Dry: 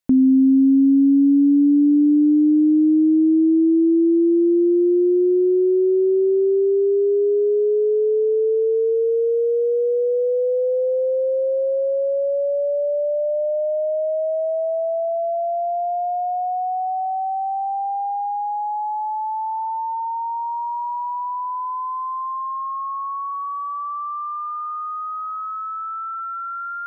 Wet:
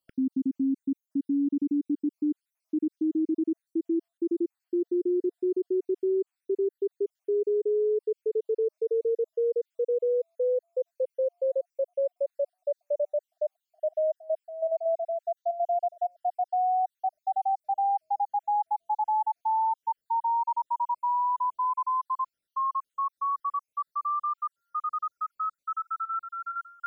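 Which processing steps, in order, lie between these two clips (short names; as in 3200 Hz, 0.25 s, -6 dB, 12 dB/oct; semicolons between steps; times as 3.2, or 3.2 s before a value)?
random spectral dropouts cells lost 58%; 4.64–5.42 dynamic EQ 460 Hz, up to +3 dB, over -33 dBFS, Q 4.6; limiter -21.5 dBFS, peak gain reduction 11.5 dB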